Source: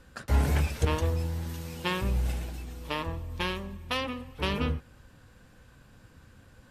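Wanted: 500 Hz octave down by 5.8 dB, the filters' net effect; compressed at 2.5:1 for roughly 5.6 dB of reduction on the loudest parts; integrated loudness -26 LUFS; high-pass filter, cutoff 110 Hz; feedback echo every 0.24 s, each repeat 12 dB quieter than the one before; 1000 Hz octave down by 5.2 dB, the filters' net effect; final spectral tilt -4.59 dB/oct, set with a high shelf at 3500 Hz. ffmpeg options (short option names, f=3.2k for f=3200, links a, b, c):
-af "highpass=110,equalizer=f=500:t=o:g=-6,equalizer=f=1k:t=o:g=-4,highshelf=f=3.5k:g=-7,acompressor=threshold=-35dB:ratio=2.5,aecho=1:1:240|480|720:0.251|0.0628|0.0157,volume=13.5dB"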